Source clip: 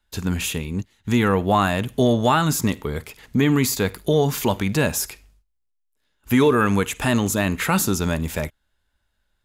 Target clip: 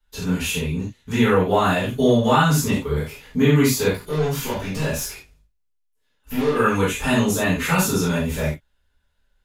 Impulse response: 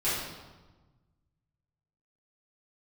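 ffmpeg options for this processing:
-filter_complex "[0:a]asplit=3[a][b][c];[a]afade=t=out:st=3.89:d=0.02[d];[b]aeval=exprs='(tanh(12.6*val(0)+0.2)-tanh(0.2))/12.6':c=same,afade=t=in:st=3.89:d=0.02,afade=t=out:st=6.55:d=0.02[e];[c]afade=t=in:st=6.55:d=0.02[f];[d][e][f]amix=inputs=3:normalize=0[g];[1:a]atrim=start_sample=2205,afade=t=out:st=0.17:d=0.01,atrim=end_sample=7938,asetrate=52920,aresample=44100[h];[g][h]afir=irnorm=-1:irlink=0,volume=-6dB"

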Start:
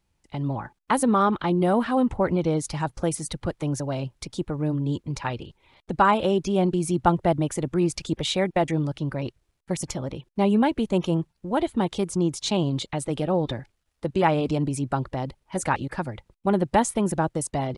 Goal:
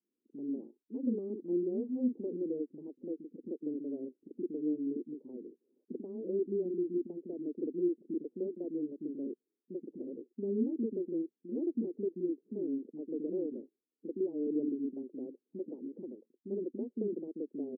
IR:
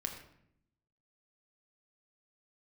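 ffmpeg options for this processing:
-filter_complex "[0:a]alimiter=limit=-16.5dB:level=0:latency=1:release=263,asuperpass=centerf=320:order=8:qfactor=1.4,acrossover=split=290[a][b];[b]adelay=40[c];[a][c]amix=inputs=2:normalize=0,volume=-2dB"

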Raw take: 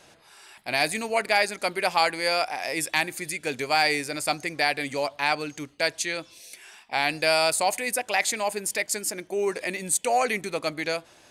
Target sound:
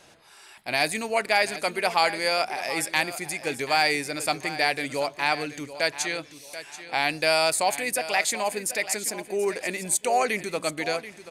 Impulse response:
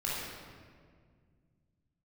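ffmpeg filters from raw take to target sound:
-af "aecho=1:1:734|1468|2202:0.211|0.0571|0.0154"

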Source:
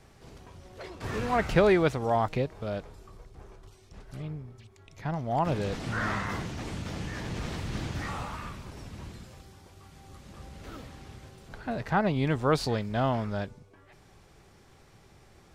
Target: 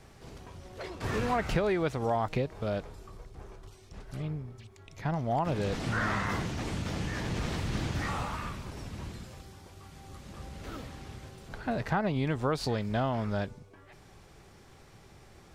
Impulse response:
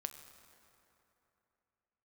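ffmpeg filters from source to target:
-af "acompressor=threshold=-27dB:ratio=6,volume=2dB"

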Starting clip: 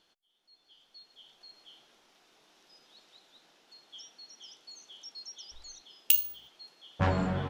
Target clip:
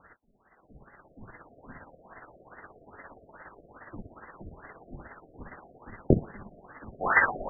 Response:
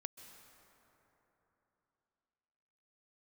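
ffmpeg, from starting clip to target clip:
-filter_complex "[0:a]flanger=delay=19.5:depth=5.2:speed=0.27,asettb=1/sr,asplit=3[a][b][c];[a]atrim=end=3.984[d];[b]atrim=start=3.98:end=5.23,asetpts=PTS-STARTPTS,afade=t=in:d=0.004:c=qsin,afade=t=out:st=1.246:d=0.004:c=qsin,acompressor=mode=upward:threshold=-54dB:ratio=2.5[e];[c]atrim=start=5.226[f];[d][e]acrossfade=d=0.004:c1=hsin:c2=qsin[g];[g][f]acrossfade=d=0.004:c1=qsin:c2=hsin,highpass=91,equalizer=f=230:t=o:w=1.7:g=-5.5,lowpass=f=2.6k:t=q:w=0.5098,lowpass=f=2.6k:t=q:w=0.6013,lowpass=f=2.6k:t=q:w=0.9,lowpass=f=2.6k:t=q:w=2.563,afreqshift=-3000,tremolo=f=17:d=0.57,alimiter=level_in=28.5dB:limit=-1dB:release=50:level=0:latency=1,afftfilt=real='re*lt(b*sr/1024,710*pow(2100/710,0.5+0.5*sin(2*PI*2.4*pts/sr)))':imag='im*lt(b*sr/1024,710*pow(2100/710,0.5+0.5*sin(2*PI*2.4*pts/sr)))':win_size=1024:overlap=0.75"

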